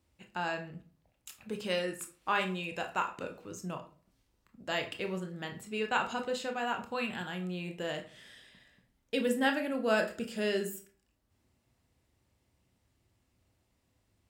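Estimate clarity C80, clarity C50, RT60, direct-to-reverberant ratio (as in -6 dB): 16.5 dB, 11.5 dB, 0.45 s, 4.5 dB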